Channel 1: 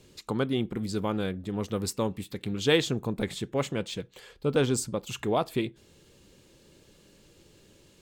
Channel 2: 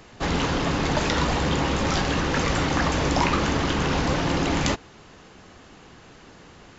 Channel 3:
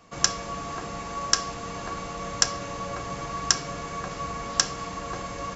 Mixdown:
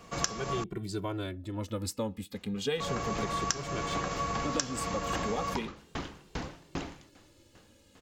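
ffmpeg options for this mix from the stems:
-filter_complex "[0:a]asplit=2[a][b];[b]adelay=2.1,afreqshift=-0.35[c];[a][c]amix=inputs=2:normalize=1,volume=-0.5dB,asplit=2[d][e];[1:a]aeval=exprs='val(0)*pow(10,-40*if(lt(mod(2.5*n/s,1),2*abs(2.5)/1000),1-mod(2.5*n/s,1)/(2*abs(2.5)/1000),(mod(2.5*n/s,1)-2*abs(2.5)/1000)/(1-2*abs(2.5)/1000))/20)':c=same,adelay=2350,volume=-7.5dB[f];[2:a]volume=2dB,asplit=3[g][h][i];[g]atrim=end=0.64,asetpts=PTS-STARTPTS,afade=t=out:st=0.636:d=0.004:c=hsin[j];[h]atrim=start=0.64:end=2.8,asetpts=PTS-STARTPTS,volume=0[k];[i]atrim=start=2.8,asetpts=PTS-STARTPTS,afade=t=in:d=0.004:c=hsin[l];[j][k][l]concat=n=3:v=0:a=1[m];[e]apad=whole_len=402877[n];[f][n]sidechaincompress=threshold=-32dB:ratio=8:attack=16:release=150[o];[d][o][m]amix=inputs=3:normalize=0,acompressor=threshold=-28dB:ratio=6"

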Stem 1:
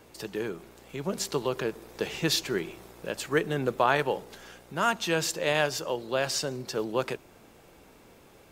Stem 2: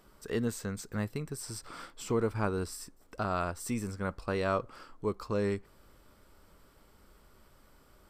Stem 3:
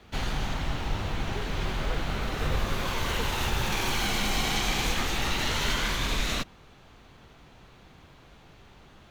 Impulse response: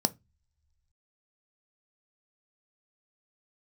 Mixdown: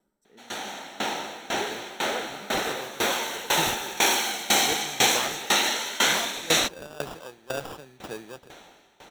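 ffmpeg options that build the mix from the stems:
-filter_complex "[0:a]acrusher=samples=21:mix=1:aa=0.000001,adelay=1350,volume=-1dB[a];[1:a]volume=-17dB,asplit=2[b][c];[c]volume=-9dB[d];[2:a]highpass=440,highshelf=f=3.6k:g=6,dynaudnorm=f=140:g=7:m=9.5dB,adelay=250,volume=-1dB,asplit=2[e][f];[f]volume=-12.5dB[g];[3:a]atrim=start_sample=2205[h];[d][g]amix=inputs=2:normalize=0[i];[i][h]afir=irnorm=-1:irlink=0[j];[a][b][e][j]amix=inputs=4:normalize=0,aeval=exprs='val(0)*pow(10,-20*if(lt(mod(2*n/s,1),2*abs(2)/1000),1-mod(2*n/s,1)/(2*abs(2)/1000),(mod(2*n/s,1)-2*abs(2)/1000)/(1-2*abs(2)/1000))/20)':c=same"

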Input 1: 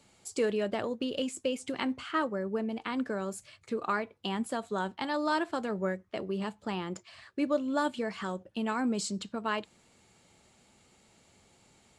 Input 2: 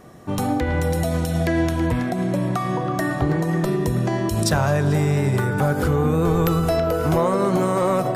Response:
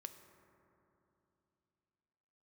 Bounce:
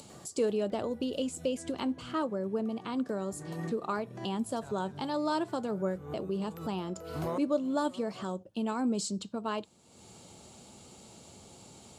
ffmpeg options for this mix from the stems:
-filter_complex "[0:a]equalizer=f=1.9k:t=o:w=0.93:g=-12.5,volume=0.5dB,asplit=2[a][b];[1:a]adelay=100,volume=-15dB[c];[b]apad=whole_len=364251[d];[c][d]sidechaincompress=threshold=-51dB:ratio=8:attack=32:release=176[e];[a][e]amix=inputs=2:normalize=0,highpass=64,acompressor=mode=upward:threshold=-41dB:ratio=2.5"

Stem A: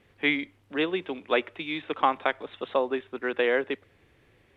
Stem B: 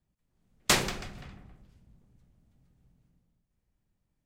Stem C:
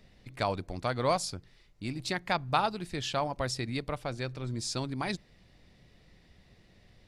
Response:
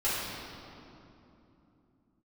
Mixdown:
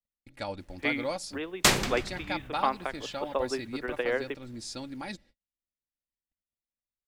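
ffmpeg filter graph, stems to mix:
-filter_complex "[0:a]lowpass=3.5k,acrusher=bits=9:mix=0:aa=0.000001,adelay=600,volume=-4dB[a];[1:a]adelay=950,volume=2.5dB[b];[2:a]agate=range=-40dB:threshold=-51dB:ratio=16:detection=peak,bandreject=f=1.1k:w=8.1,aecho=1:1:3.6:0.59,volume=-6dB,asplit=2[c][d];[d]apad=whole_len=227582[e];[a][e]sidechaingate=range=-6dB:threshold=-44dB:ratio=16:detection=peak[f];[f][b][c]amix=inputs=3:normalize=0"

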